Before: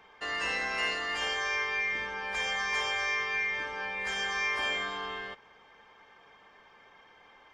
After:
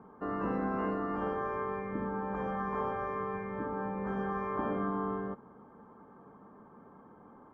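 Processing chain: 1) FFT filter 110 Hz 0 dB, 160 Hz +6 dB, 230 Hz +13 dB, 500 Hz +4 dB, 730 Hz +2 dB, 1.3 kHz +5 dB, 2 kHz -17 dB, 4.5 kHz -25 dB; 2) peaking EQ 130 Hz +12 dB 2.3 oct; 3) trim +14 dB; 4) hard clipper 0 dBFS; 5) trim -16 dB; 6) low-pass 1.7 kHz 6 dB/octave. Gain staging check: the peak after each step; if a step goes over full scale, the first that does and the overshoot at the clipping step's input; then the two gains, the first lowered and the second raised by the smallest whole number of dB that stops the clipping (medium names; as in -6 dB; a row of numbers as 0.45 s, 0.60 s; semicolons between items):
-19.5 dBFS, -17.0 dBFS, -3.0 dBFS, -3.0 dBFS, -19.0 dBFS, -20.0 dBFS; nothing clips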